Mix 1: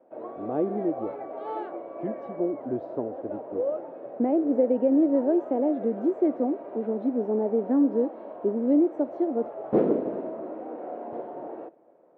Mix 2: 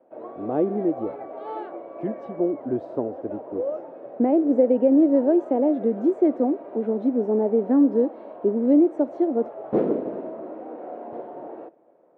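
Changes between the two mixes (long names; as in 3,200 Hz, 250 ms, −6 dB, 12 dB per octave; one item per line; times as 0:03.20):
speech +4.0 dB
master: remove high-frequency loss of the air 65 metres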